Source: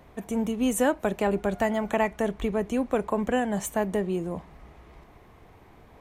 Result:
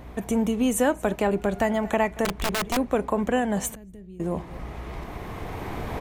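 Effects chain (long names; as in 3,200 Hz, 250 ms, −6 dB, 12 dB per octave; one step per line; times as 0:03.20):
camcorder AGC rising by 8.9 dB per second
on a send: single-tap delay 230 ms −20.5 dB
on the sum: mains hum 60 Hz, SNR 22 dB
in parallel at +1 dB: downward compressor, threshold −37 dBFS, peak gain reduction 17.5 dB
0:02.25–0:02.77: on the sum: wrap-around overflow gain 19 dB
0:03.75–0:04.20: guitar amp tone stack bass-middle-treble 10-0-1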